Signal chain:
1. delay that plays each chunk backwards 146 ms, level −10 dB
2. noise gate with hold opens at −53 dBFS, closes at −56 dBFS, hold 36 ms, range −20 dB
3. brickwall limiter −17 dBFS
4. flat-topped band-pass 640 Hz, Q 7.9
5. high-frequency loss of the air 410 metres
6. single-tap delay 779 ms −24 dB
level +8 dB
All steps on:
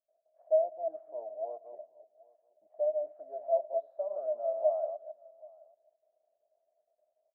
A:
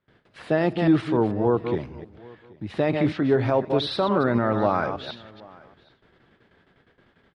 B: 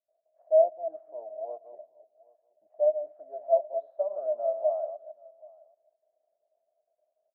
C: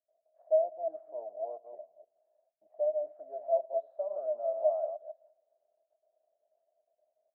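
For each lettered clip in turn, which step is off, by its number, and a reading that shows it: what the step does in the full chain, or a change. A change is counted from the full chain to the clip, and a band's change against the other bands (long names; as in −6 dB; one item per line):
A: 4, change in crest factor −3.5 dB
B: 3, change in momentary loudness spread +2 LU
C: 6, change in momentary loudness spread −1 LU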